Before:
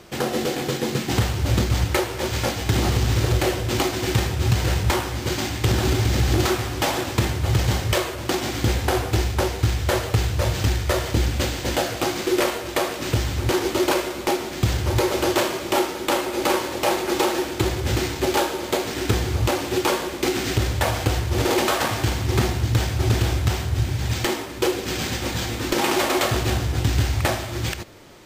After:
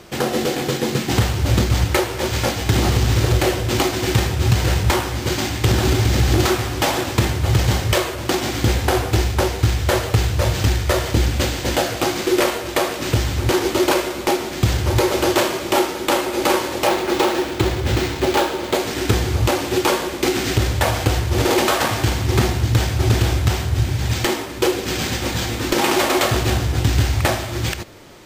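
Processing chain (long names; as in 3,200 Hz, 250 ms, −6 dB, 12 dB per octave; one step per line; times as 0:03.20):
0:16.87–0:18.75: running median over 5 samples
level +3.5 dB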